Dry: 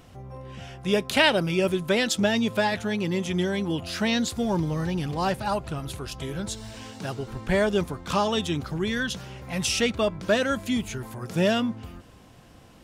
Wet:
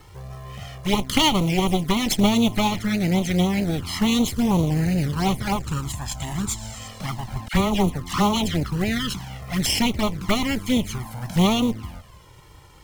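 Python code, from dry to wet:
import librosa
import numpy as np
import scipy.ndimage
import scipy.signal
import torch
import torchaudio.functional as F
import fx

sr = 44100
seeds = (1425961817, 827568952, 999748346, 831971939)

y = fx.lower_of_two(x, sr, delay_ms=0.95)
y = fx.dispersion(y, sr, late='lows', ms=54.0, hz=1500.0, at=(7.48, 8.63))
y = fx.quant_float(y, sr, bits=2)
y = fx.env_flanger(y, sr, rest_ms=2.4, full_db=-23.0)
y = fx.peak_eq(y, sr, hz=7200.0, db=11.0, octaves=0.31, at=(5.58, 6.88))
y = F.gain(torch.from_numpy(y), 7.5).numpy()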